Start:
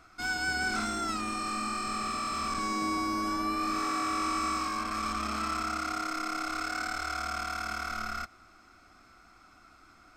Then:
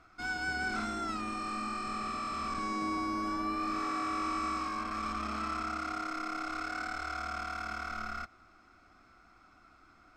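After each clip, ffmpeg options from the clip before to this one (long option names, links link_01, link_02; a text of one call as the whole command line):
ffmpeg -i in.wav -af "aemphasis=mode=reproduction:type=50kf,volume=-2.5dB" out.wav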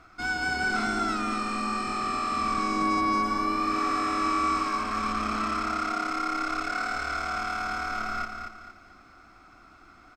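ffmpeg -i in.wav -af "aecho=1:1:232|464|696|928:0.501|0.18|0.065|0.0234,volume=6.5dB" out.wav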